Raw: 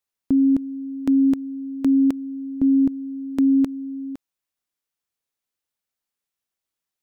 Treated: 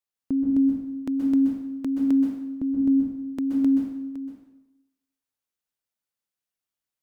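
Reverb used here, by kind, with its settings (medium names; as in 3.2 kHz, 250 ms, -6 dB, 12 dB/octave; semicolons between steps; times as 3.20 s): plate-style reverb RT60 0.9 s, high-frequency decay 0.8×, pre-delay 115 ms, DRR 0.5 dB; trim -6.5 dB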